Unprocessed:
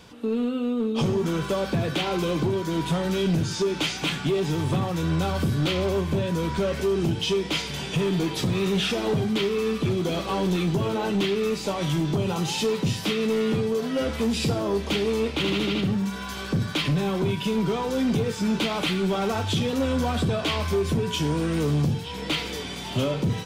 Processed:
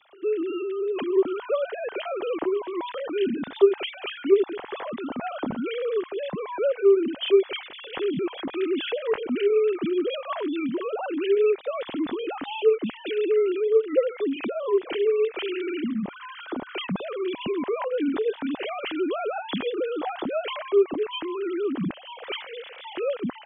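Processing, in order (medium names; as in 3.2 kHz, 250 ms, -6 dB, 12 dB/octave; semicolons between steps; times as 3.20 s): formants replaced by sine waves; trim -1 dB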